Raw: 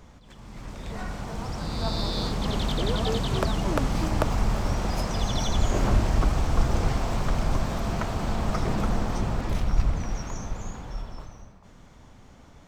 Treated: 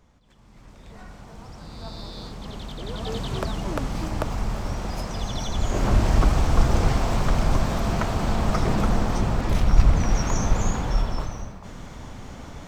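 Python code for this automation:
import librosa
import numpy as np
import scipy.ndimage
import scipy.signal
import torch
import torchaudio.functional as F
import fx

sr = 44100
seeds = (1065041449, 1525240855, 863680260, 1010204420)

y = fx.gain(x, sr, db=fx.line((2.77, -9.0), (3.2, -2.5), (5.51, -2.5), (6.11, 4.0), (9.39, 4.0), (10.58, 12.0)))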